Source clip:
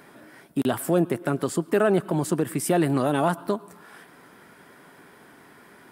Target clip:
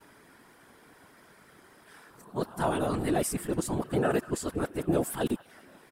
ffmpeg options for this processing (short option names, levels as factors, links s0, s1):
-filter_complex "[0:a]areverse,highshelf=f=9200:g=-7,acrossover=split=780|4300[s0][s1][s2];[s1]aecho=1:1:191|382|573|764|955:0.178|0.0942|0.05|0.0265|0.014[s3];[s2]acontrast=79[s4];[s0][s3][s4]amix=inputs=3:normalize=0,afftfilt=real='hypot(re,im)*cos(2*PI*random(0))':imag='hypot(re,im)*sin(2*PI*random(1))':win_size=512:overlap=0.75"